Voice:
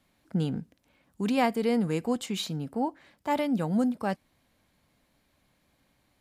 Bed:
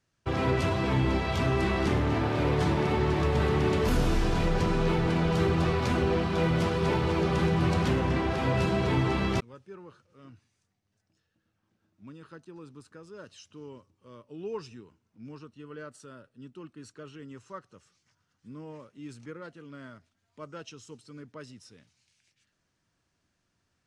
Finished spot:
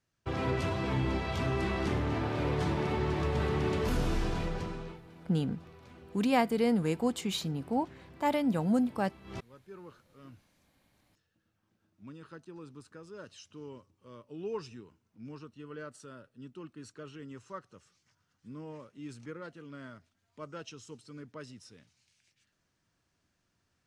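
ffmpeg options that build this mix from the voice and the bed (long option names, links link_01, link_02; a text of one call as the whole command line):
ffmpeg -i stem1.wav -i stem2.wav -filter_complex "[0:a]adelay=4950,volume=-1.5dB[link_01];[1:a]volume=21dB,afade=type=out:start_time=4.22:duration=0.79:silence=0.0794328,afade=type=in:start_time=9.24:duration=0.62:silence=0.0501187[link_02];[link_01][link_02]amix=inputs=2:normalize=0" out.wav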